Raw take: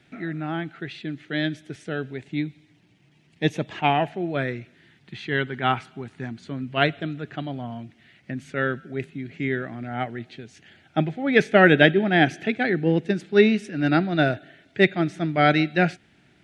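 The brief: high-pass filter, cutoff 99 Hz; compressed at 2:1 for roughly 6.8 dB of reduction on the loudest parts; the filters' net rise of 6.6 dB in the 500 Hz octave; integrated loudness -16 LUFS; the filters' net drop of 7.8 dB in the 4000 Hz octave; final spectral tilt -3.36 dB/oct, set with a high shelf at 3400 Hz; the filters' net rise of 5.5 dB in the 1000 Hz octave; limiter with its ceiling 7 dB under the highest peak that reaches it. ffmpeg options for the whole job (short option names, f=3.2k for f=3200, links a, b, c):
-af "highpass=99,equalizer=f=500:t=o:g=7.5,equalizer=f=1k:t=o:g=5.5,highshelf=f=3.4k:g=-7,equalizer=f=4k:t=o:g=-6.5,acompressor=threshold=-18dB:ratio=2,volume=9.5dB,alimiter=limit=-2dB:level=0:latency=1"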